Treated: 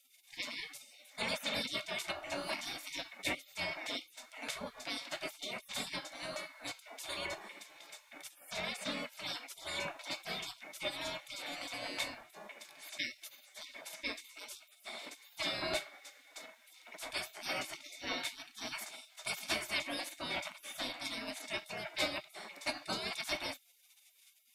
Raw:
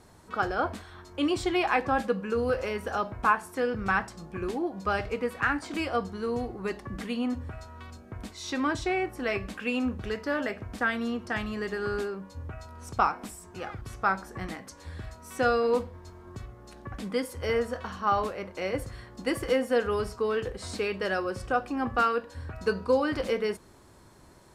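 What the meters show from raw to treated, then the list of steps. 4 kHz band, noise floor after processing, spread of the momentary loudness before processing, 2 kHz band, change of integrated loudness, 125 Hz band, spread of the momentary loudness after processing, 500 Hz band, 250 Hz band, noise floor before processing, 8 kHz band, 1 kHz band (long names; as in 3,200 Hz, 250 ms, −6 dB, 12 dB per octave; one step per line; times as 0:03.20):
+2.5 dB, −65 dBFS, 16 LU, −8.0 dB, −10.0 dB, −17.5 dB, 14 LU, −16.5 dB, −17.0 dB, −53 dBFS, +1.0 dB, −16.0 dB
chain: gate on every frequency bin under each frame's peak −30 dB weak
low-shelf EQ 210 Hz −6.5 dB
hollow resonant body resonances 250/610/2,200/3,600 Hz, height 13 dB, ringing for 30 ms
level +7.5 dB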